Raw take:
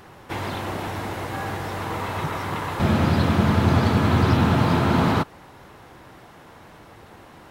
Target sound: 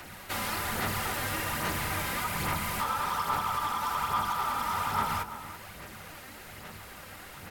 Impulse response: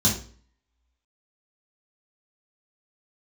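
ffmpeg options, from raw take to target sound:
-filter_complex "[0:a]aemphasis=mode=production:type=75kf,acrossover=split=300|6200[link_01][link_02][link_03];[link_02]alimiter=limit=-22dB:level=0:latency=1:release=369[link_04];[link_01][link_04][link_03]amix=inputs=3:normalize=0,acompressor=threshold=-23dB:ratio=4,aeval=exprs='val(0)*sin(2*PI*1100*n/s)':channel_layout=same,asoftclip=type=tanh:threshold=-23.5dB,aphaser=in_gain=1:out_gain=1:delay=3.8:decay=0.4:speed=1.2:type=sinusoidal,asplit=2[link_05][link_06];[link_06]adelay=332.4,volume=-12dB,highshelf=frequency=4000:gain=-7.48[link_07];[link_05][link_07]amix=inputs=2:normalize=0,asplit=2[link_08][link_09];[1:a]atrim=start_sample=2205,lowpass=3600[link_10];[link_09][link_10]afir=irnorm=-1:irlink=0,volume=-23.5dB[link_11];[link_08][link_11]amix=inputs=2:normalize=0"

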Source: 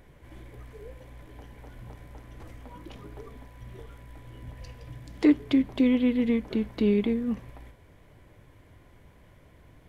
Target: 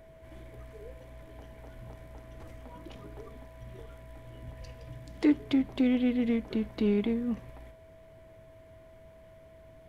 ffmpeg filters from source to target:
ffmpeg -i in.wav -filter_complex "[0:a]asplit=2[link_01][link_02];[link_02]asoftclip=type=hard:threshold=-25dB,volume=-9dB[link_03];[link_01][link_03]amix=inputs=2:normalize=0,aeval=exprs='val(0)+0.00398*sin(2*PI*650*n/s)':channel_layout=same,volume=-5dB" out.wav

